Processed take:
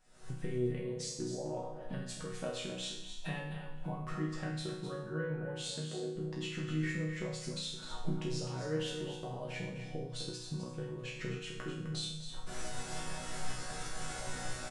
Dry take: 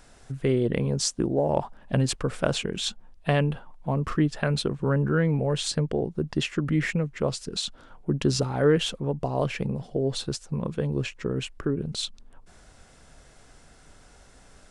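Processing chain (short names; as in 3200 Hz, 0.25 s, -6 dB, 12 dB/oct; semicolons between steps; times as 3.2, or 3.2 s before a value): recorder AGC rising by 62 dB/s; 5.39–6.14 HPF 97 Hz -> 270 Hz; resonator bank B2 major, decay 0.73 s; echo 0.257 s -9 dB; gain +3 dB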